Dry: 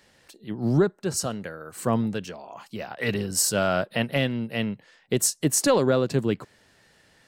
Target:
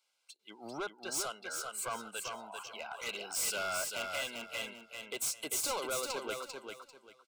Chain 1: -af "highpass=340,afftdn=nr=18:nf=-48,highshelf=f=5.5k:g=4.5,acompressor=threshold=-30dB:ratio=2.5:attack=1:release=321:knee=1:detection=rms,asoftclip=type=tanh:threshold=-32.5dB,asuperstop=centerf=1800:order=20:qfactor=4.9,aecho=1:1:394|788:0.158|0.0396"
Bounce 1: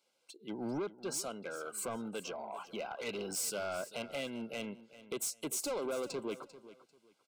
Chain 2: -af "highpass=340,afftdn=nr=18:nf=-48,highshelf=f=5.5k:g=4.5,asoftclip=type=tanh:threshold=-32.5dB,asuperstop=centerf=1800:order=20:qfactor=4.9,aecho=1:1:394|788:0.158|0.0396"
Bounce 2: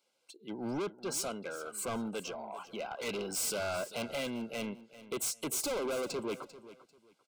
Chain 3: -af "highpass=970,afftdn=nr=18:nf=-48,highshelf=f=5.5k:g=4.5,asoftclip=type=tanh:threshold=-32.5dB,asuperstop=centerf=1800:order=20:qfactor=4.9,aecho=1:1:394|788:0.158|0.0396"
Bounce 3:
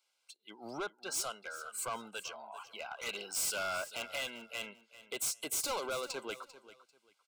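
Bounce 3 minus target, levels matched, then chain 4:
echo-to-direct -11 dB
-af "highpass=970,afftdn=nr=18:nf=-48,highshelf=f=5.5k:g=4.5,asoftclip=type=tanh:threshold=-32.5dB,asuperstop=centerf=1800:order=20:qfactor=4.9,aecho=1:1:394|788|1182:0.562|0.141|0.0351"

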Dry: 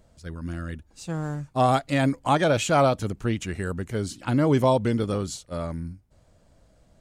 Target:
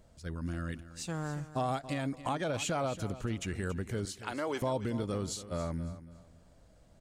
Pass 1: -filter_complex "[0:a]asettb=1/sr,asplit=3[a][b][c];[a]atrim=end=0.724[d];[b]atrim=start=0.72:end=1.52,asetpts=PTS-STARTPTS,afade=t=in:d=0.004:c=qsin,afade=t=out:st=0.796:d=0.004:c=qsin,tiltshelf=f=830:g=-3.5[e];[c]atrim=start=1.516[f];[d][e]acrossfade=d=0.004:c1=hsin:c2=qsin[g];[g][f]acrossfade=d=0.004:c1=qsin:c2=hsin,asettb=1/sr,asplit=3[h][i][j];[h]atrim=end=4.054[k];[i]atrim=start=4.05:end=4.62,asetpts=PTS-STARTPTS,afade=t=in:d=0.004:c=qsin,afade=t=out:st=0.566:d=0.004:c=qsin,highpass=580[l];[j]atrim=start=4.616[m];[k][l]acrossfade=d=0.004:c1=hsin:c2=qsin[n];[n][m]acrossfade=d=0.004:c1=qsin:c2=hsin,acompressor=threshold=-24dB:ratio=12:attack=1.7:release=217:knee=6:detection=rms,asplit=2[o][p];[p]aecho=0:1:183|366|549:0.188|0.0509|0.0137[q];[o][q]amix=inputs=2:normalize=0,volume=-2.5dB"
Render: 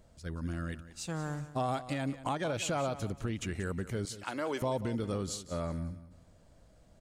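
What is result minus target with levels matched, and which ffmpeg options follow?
echo 96 ms early
-filter_complex "[0:a]asettb=1/sr,asplit=3[a][b][c];[a]atrim=end=0.724[d];[b]atrim=start=0.72:end=1.52,asetpts=PTS-STARTPTS,afade=t=in:d=0.004:c=qsin,afade=t=out:st=0.796:d=0.004:c=qsin,tiltshelf=f=830:g=-3.5[e];[c]atrim=start=1.516[f];[d][e]acrossfade=d=0.004:c1=hsin:c2=qsin[g];[g][f]acrossfade=d=0.004:c1=qsin:c2=hsin,asettb=1/sr,asplit=3[h][i][j];[h]atrim=end=4.054[k];[i]atrim=start=4.05:end=4.62,asetpts=PTS-STARTPTS,afade=t=in:d=0.004:c=qsin,afade=t=out:st=0.566:d=0.004:c=qsin,highpass=580[l];[j]atrim=start=4.616[m];[k][l]acrossfade=d=0.004:c1=hsin:c2=qsin[n];[n][m]acrossfade=d=0.004:c1=qsin:c2=hsin,acompressor=threshold=-24dB:ratio=12:attack=1.7:release=217:knee=6:detection=rms,asplit=2[o][p];[p]aecho=0:1:279|558|837:0.188|0.0509|0.0137[q];[o][q]amix=inputs=2:normalize=0,volume=-2.5dB"

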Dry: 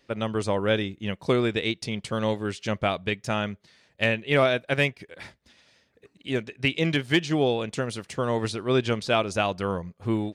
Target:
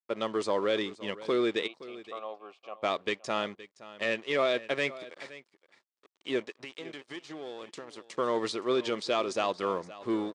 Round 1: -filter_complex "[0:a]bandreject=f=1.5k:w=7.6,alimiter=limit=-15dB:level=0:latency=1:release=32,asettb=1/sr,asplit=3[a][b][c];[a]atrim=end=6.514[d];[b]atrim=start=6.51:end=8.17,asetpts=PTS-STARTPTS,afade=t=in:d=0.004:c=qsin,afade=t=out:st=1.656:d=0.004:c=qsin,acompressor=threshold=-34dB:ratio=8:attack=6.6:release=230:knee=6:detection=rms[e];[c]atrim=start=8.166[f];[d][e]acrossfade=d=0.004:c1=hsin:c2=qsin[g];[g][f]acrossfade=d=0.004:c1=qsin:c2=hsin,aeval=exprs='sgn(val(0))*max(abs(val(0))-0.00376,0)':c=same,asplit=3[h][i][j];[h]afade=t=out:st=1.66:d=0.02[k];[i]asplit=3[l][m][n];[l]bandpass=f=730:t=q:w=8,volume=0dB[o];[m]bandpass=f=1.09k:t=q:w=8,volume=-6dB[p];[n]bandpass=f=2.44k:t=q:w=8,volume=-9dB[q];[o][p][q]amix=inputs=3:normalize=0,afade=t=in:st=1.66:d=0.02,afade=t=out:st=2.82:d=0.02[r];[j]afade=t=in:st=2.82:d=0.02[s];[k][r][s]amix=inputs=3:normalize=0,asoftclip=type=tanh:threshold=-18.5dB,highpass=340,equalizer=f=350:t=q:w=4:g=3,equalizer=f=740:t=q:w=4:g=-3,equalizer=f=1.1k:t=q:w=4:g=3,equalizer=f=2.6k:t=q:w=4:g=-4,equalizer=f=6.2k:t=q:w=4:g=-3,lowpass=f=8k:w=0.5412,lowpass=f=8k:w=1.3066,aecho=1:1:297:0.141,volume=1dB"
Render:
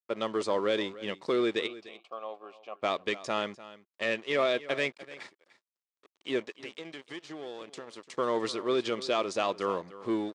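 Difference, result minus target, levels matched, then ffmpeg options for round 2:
echo 0.222 s early
-filter_complex "[0:a]bandreject=f=1.5k:w=7.6,alimiter=limit=-15dB:level=0:latency=1:release=32,asettb=1/sr,asplit=3[a][b][c];[a]atrim=end=6.514[d];[b]atrim=start=6.51:end=8.17,asetpts=PTS-STARTPTS,afade=t=in:d=0.004:c=qsin,afade=t=out:st=1.656:d=0.004:c=qsin,acompressor=threshold=-34dB:ratio=8:attack=6.6:release=230:knee=6:detection=rms[e];[c]atrim=start=8.166[f];[d][e]acrossfade=d=0.004:c1=hsin:c2=qsin[g];[g][f]acrossfade=d=0.004:c1=qsin:c2=hsin,aeval=exprs='sgn(val(0))*max(abs(val(0))-0.00376,0)':c=same,asplit=3[h][i][j];[h]afade=t=out:st=1.66:d=0.02[k];[i]asplit=3[l][m][n];[l]bandpass=f=730:t=q:w=8,volume=0dB[o];[m]bandpass=f=1.09k:t=q:w=8,volume=-6dB[p];[n]bandpass=f=2.44k:t=q:w=8,volume=-9dB[q];[o][p][q]amix=inputs=3:normalize=0,afade=t=in:st=1.66:d=0.02,afade=t=out:st=2.82:d=0.02[r];[j]afade=t=in:st=2.82:d=0.02[s];[k][r][s]amix=inputs=3:normalize=0,asoftclip=type=tanh:threshold=-18.5dB,highpass=340,equalizer=f=350:t=q:w=4:g=3,equalizer=f=740:t=q:w=4:g=-3,equalizer=f=1.1k:t=q:w=4:g=3,equalizer=f=2.6k:t=q:w=4:g=-4,equalizer=f=6.2k:t=q:w=4:g=-3,lowpass=f=8k:w=0.5412,lowpass=f=8k:w=1.3066,aecho=1:1:519:0.141,volume=1dB"

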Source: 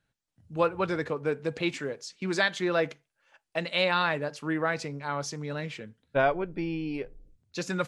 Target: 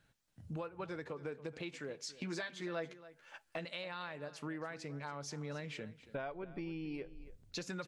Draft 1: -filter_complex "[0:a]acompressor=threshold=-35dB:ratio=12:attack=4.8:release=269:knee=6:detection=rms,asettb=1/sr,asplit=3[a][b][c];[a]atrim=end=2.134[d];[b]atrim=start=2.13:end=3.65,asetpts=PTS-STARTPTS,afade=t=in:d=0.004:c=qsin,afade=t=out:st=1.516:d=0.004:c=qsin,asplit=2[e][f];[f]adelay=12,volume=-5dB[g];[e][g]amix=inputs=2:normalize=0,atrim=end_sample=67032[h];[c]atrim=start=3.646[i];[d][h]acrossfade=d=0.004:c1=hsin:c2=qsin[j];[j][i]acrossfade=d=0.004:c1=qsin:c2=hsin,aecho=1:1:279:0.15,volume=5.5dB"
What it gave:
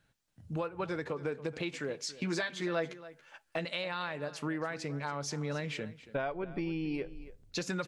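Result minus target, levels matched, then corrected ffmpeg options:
compressor: peak gain reduction -7.5 dB
-filter_complex "[0:a]acompressor=threshold=-43dB:ratio=12:attack=4.8:release=269:knee=6:detection=rms,asettb=1/sr,asplit=3[a][b][c];[a]atrim=end=2.134[d];[b]atrim=start=2.13:end=3.65,asetpts=PTS-STARTPTS,afade=t=in:d=0.004:c=qsin,afade=t=out:st=1.516:d=0.004:c=qsin,asplit=2[e][f];[f]adelay=12,volume=-5dB[g];[e][g]amix=inputs=2:normalize=0,atrim=end_sample=67032[h];[c]atrim=start=3.646[i];[d][h]acrossfade=d=0.004:c1=hsin:c2=qsin[j];[j][i]acrossfade=d=0.004:c1=qsin:c2=hsin,aecho=1:1:279:0.15,volume=5.5dB"

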